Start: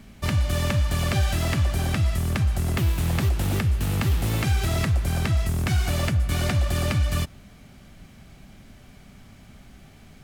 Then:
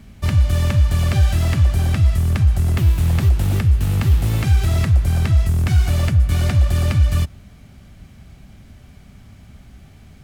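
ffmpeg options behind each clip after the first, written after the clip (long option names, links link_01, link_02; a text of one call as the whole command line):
ffmpeg -i in.wav -af "equalizer=frequency=75:width_type=o:width=1.8:gain=9" out.wav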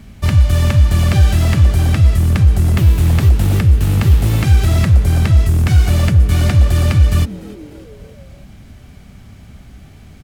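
ffmpeg -i in.wav -filter_complex "[0:a]asplit=5[link_01][link_02][link_03][link_04][link_05];[link_02]adelay=296,afreqshift=120,volume=-21dB[link_06];[link_03]adelay=592,afreqshift=240,volume=-26.8dB[link_07];[link_04]adelay=888,afreqshift=360,volume=-32.7dB[link_08];[link_05]adelay=1184,afreqshift=480,volume=-38.5dB[link_09];[link_01][link_06][link_07][link_08][link_09]amix=inputs=5:normalize=0,volume=4.5dB" out.wav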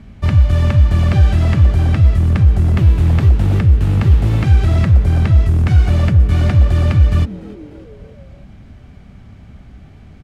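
ffmpeg -i in.wav -af "aemphasis=mode=reproduction:type=75fm,volume=-1dB" out.wav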